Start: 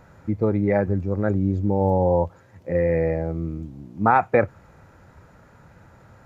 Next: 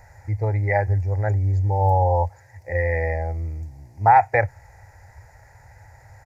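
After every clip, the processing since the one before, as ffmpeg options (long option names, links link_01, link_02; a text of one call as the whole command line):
ffmpeg -i in.wav -af "firequalizer=gain_entry='entry(110,0);entry(180,-26);entry(420,-13);entry(830,2);entry(1200,-18);entry(1900,5);entry(3100,-19);entry(4900,2)':delay=0.05:min_phase=1,volume=5.5dB" out.wav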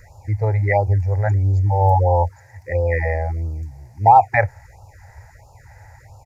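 ffmpeg -i in.wav -af "afftfilt=real='re*(1-between(b*sr/1024,210*pow(1900/210,0.5+0.5*sin(2*PI*1.5*pts/sr))/1.41,210*pow(1900/210,0.5+0.5*sin(2*PI*1.5*pts/sr))*1.41))':imag='im*(1-between(b*sr/1024,210*pow(1900/210,0.5+0.5*sin(2*PI*1.5*pts/sr))/1.41,210*pow(1900/210,0.5+0.5*sin(2*PI*1.5*pts/sr))*1.41))':win_size=1024:overlap=0.75,volume=3.5dB" out.wav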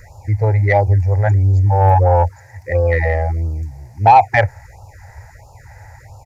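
ffmpeg -i in.wav -af "acontrast=46,volume=-1dB" out.wav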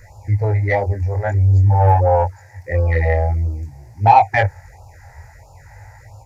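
ffmpeg -i in.wav -af "flanger=delay=18.5:depth=6.3:speed=0.49,volume=1dB" out.wav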